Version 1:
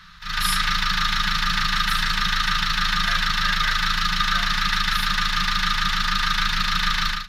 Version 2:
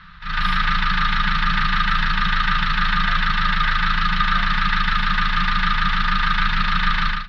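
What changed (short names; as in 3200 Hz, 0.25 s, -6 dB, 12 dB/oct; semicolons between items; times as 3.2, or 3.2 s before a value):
background +5.5 dB; master: add air absorption 340 m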